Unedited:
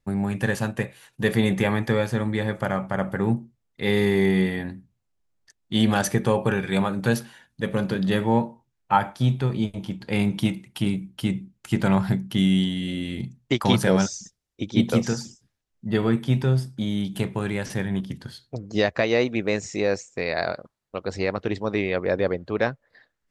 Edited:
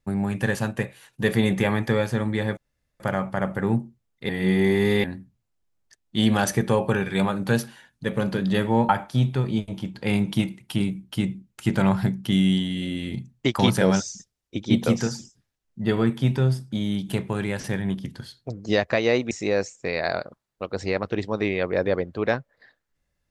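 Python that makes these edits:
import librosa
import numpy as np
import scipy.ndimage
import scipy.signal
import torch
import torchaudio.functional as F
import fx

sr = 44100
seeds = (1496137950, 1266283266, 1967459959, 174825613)

y = fx.edit(x, sr, fx.insert_room_tone(at_s=2.57, length_s=0.43),
    fx.reverse_span(start_s=3.86, length_s=0.75),
    fx.cut(start_s=8.46, length_s=0.49),
    fx.cut(start_s=19.37, length_s=0.27), tone=tone)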